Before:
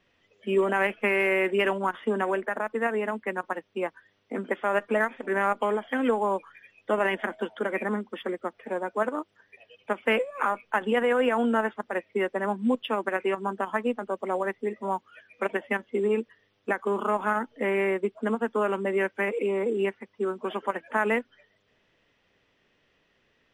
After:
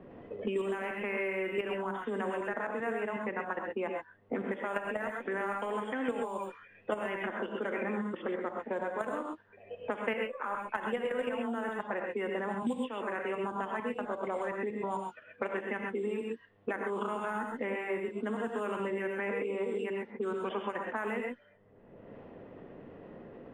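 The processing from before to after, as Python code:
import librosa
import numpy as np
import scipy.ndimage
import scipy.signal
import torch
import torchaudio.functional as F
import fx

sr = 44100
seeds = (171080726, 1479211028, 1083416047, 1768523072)

y = fx.env_lowpass(x, sr, base_hz=610.0, full_db=-21.5)
y = fx.level_steps(y, sr, step_db=11)
y = fx.rev_gated(y, sr, seeds[0], gate_ms=150, shape='rising', drr_db=1.5)
y = fx.band_squash(y, sr, depth_pct=100)
y = y * librosa.db_to_amplitude(-3.5)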